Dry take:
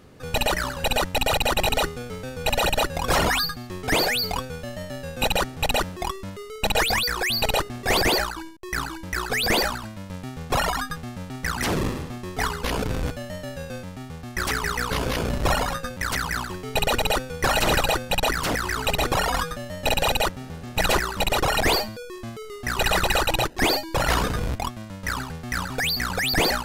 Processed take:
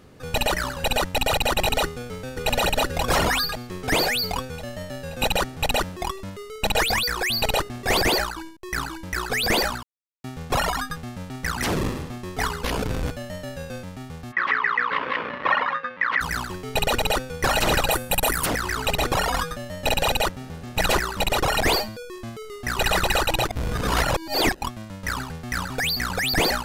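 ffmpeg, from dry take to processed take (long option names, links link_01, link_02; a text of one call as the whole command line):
ffmpeg -i in.wav -filter_complex "[0:a]asplit=2[link_01][link_02];[link_02]afade=type=in:start_time=1.84:duration=0.01,afade=type=out:start_time=2.5:duration=0.01,aecho=0:1:530|1060|1590|2120|2650|3180|3710|4240|4770:0.630957|0.378574|0.227145|0.136287|0.0817721|0.0490632|0.0294379|0.0176628|0.0105977[link_03];[link_01][link_03]amix=inputs=2:normalize=0,asplit=3[link_04][link_05][link_06];[link_04]afade=type=out:start_time=14.31:duration=0.02[link_07];[link_05]highpass=370,equalizer=frequency=380:width_type=q:width=4:gain=-7,equalizer=frequency=700:width_type=q:width=4:gain=-8,equalizer=frequency=1100:width_type=q:width=4:gain=9,equalizer=frequency=1900:width_type=q:width=4:gain=9,lowpass=frequency=3100:width=0.5412,lowpass=frequency=3100:width=1.3066,afade=type=in:start_time=14.31:duration=0.02,afade=type=out:start_time=16.2:duration=0.02[link_08];[link_06]afade=type=in:start_time=16.2:duration=0.02[link_09];[link_07][link_08][link_09]amix=inputs=3:normalize=0,asettb=1/sr,asplit=3[link_10][link_11][link_12];[link_10]atrim=end=17.914[link_13];[link_11]atrim=start=17.91:end=18.46,asetpts=PTS-STARTPTS,afade=type=in:duration=0.004:curve=qsin,afade=type=out:start_time=0.546:duration=0.004:curve=qsin,highshelf=frequency=7600:width_type=q:width=1.5:gain=9[link_14];[link_12]atrim=start=18.456[link_15];[link_13][link_14]acrossfade=duration=0.004:curve1=hsin:curve2=qsin[link_16];[link_16][link_15]acrossfade=duration=0.004:curve1=qsin:curve2=hsin,asplit=5[link_17][link_18][link_19][link_20][link_21];[link_17]atrim=end=9.83,asetpts=PTS-STARTPTS,afade=type=out:start_time=9.826:duration=0.004:curve=hsin[link_22];[link_18]atrim=start=9.83:end=10.24,asetpts=PTS-STARTPTS,volume=0[link_23];[link_19]atrim=start=10.24:end=23.492,asetpts=PTS-STARTPTS,afade=type=in:duration=0.004:curve=hsin[link_24];[link_20]atrim=start=23.488:end=24.622,asetpts=PTS-STARTPTS,areverse[link_25];[link_21]atrim=start=24.618[link_26];[link_22][link_23][link_24]concat=n=3:v=0:a=1[link_27];[link_27][link_25]acrossfade=duration=0.004:curve1=hsin:curve2=hsin[link_28];[link_28][link_26]acrossfade=duration=0.004:curve1=hsin:curve2=hsin" out.wav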